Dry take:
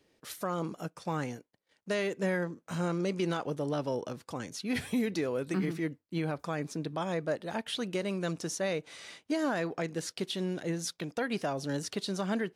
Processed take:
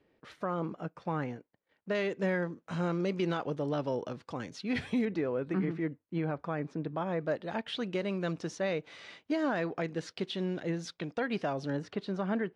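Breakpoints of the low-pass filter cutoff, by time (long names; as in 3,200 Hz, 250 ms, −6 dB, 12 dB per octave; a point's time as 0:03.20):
2,300 Hz
from 0:01.95 4,100 Hz
from 0:05.05 2,000 Hz
from 0:07.21 3,700 Hz
from 0:11.70 2,100 Hz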